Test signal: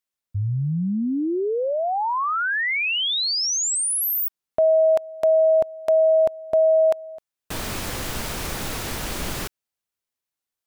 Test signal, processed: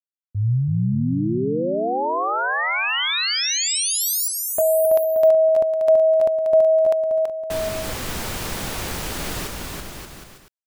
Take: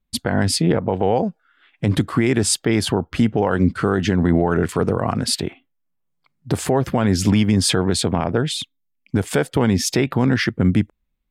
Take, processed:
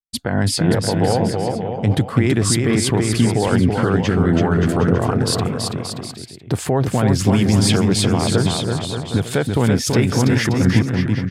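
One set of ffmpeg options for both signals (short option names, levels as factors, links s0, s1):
-af "agate=range=0.0224:threshold=0.0141:ratio=3:release=324:detection=rms,adynamicequalizer=threshold=0.02:dfrequency=120:dqfactor=2.5:tfrequency=120:tqfactor=2.5:attack=5:release=100:ratio=0.375:range=3:mode=boostabove:tftype=bell,aecho=1:1:330|577.5|763.1|902.3|1007:0.631|0.398|0.251|0.158|0.1,volume=0.891"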